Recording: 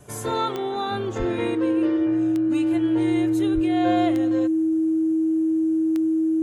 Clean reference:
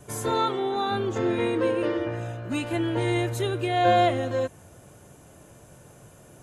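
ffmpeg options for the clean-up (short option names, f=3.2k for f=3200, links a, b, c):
-filter_complex "[0:a]adeclick=t=4,bandreject=f=320:w=30,asplit=3[a][b][c];[a]afade=t=out:st=1.18:d=0.02[d];[b]highpass=f=140:w=0.5412,highpass=f=140:w=1.3066,afade=t=in:st=1.18:d=0.02,afade=t=out:st=1.3:d=0.02[e];[c]afade=t=in:st=1.3:d=0.02[f];[d][e][f]amix=inputs=3:normalize=0,asplit=3[g][h][i];[g]afade=t=out:st=3.54:d=0.02[j];[h]highpass=f=140:w=0.5412,highpass=f=140:w=1.3066,afade=t=in:st=3.54:d=0.02,afade=t=out:st=3.66:d=0.02[k];[i]afade=t=in:st=3.66:d=0.02[l];[j][k][l]amix=inputs=3:normalize=0,asetnsamples=n=441:p=0,asendcmd='1.55 volume volume 4.5dB',volume=0dB"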